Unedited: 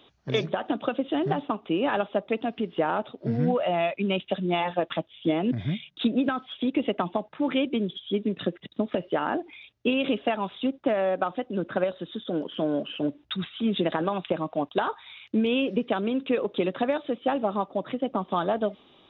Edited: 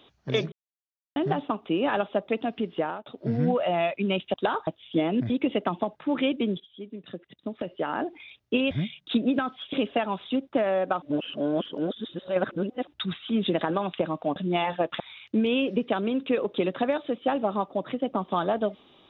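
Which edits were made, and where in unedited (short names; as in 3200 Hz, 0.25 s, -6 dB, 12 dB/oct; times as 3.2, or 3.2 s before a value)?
0.52–1.16 mute
2.61–3.06 fade out equal-power
4.34–4.98 swap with 14.67–15
5.61–6.63 move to 10.04
7.93–9.51 fade in quadratic, from -14 dB
11.33–13.18 reverse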